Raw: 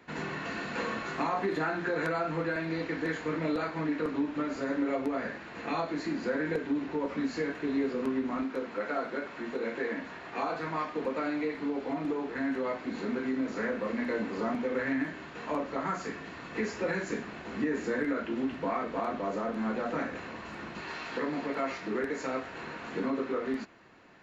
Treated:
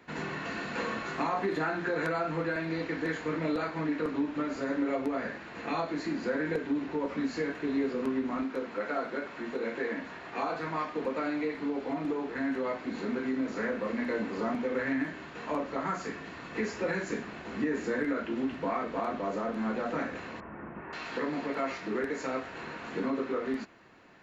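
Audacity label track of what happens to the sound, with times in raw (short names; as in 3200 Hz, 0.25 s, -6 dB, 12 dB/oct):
20.400000	20.930000	Bessel low-pass 1300 Hz, order 8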